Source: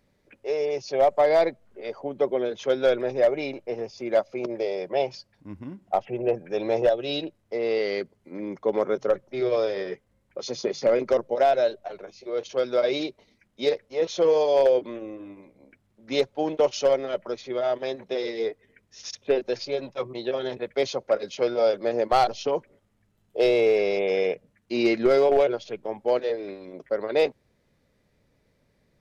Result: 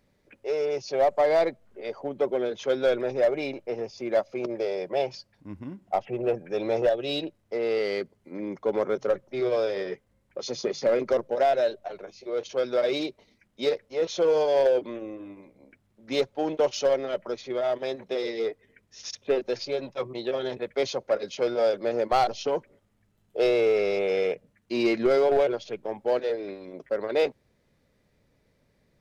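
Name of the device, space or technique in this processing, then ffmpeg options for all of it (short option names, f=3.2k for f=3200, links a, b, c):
parallel distortion: -filter_complex "[0:a]asplit=2[a][b];[b]asoftclip=type=hard:threshold=-25dB,volume=-7dB[c];[a][c]amix=inputs=2:normalize=0,volume=-3.5dB"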